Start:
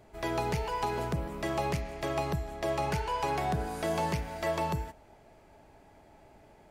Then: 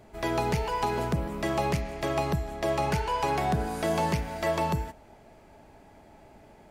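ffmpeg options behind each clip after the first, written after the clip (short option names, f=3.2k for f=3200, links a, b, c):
-af "equalizer=f=220:w=3.1:g=4,volume=3.5dB"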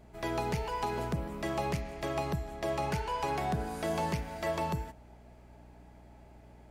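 -af "aeval=exprs='val(0)+0.00355*(sin(2*PI*60*n/s)+sin(2*PI*2*60*n/s)/2+sin(2*PI*3*60*n/s)/3+sin(2*PI*4*60*n/s)/4+sin(2*PI*5*60*n/s)/5)':c=same,volume=-5.5dB"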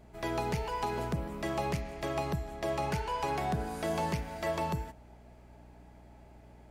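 -af anull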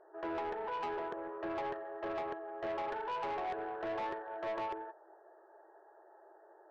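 -af "afftfilt=real='re*between(b*sr/4096,320,1900)':imag='im*between(b*sr/4096,320,1900)':win_size=4096:overlap=0.75,asoftclip=type=tanh:threshold=-35dB,volume=1dB"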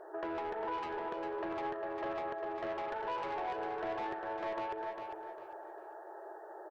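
-filter_complex "[0:a]acompressor=threshold=-49dB:ratio=5,asplit=2[a][b];[b]aecho=0:1:401|802|1203|1604:0.501|0.14|0.0393|0.011[c];[a][c]amix=inputs=2:normalize=0,volume=10.5dB"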